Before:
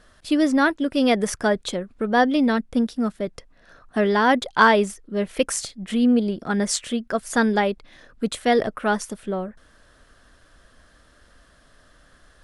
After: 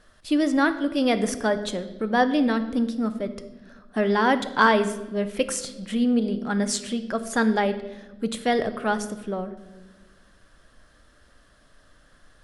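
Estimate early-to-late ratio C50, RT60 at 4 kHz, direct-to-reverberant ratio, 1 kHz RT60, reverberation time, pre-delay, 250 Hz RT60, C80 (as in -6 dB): 12.5 dB, 0.95 s, 10.0 dB, 1.0 s, 1.3 s, 4 ms, 1.9 s, 14.5 dB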